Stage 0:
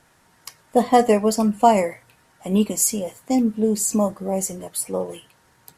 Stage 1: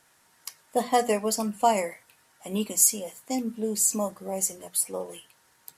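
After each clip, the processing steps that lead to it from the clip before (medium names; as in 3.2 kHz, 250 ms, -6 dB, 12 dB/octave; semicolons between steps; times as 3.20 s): tilt EQ +2 dB/octave; hum notches 60/120/180/240 Hz; trim -6 dB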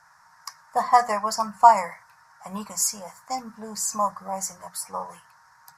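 FFT filter 170 Hz 0 dB, 240 Hz -14 dB, 360 Hz -20 dB, 1 kHz +13 dB, 1.7 kHz +7 dB, 3.1 kHz -17 dB, 5.3 kHz +3 dB, 8.8 kHz -10 dB; trim +2 dB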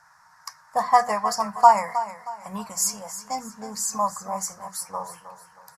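feedback delay 315 ms, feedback 37%, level -12.5 dB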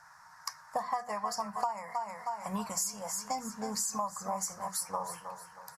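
compression 12:1, threshold -30 dBFS, peak gain reduction 22.5 dB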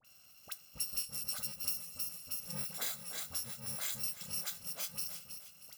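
bit-reversed sample order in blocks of 128 samples; phase dispersion highs, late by 47 ms, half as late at 1.4 kHz; trim -4.5 dB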